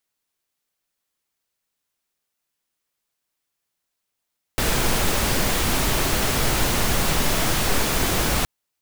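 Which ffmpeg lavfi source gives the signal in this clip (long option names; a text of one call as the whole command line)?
ffmpeg -f lavfi -i "anoisesrc=color=pink:amplitude=0.484:duration=3.87:sample_rate=44100:seed=1" out.wav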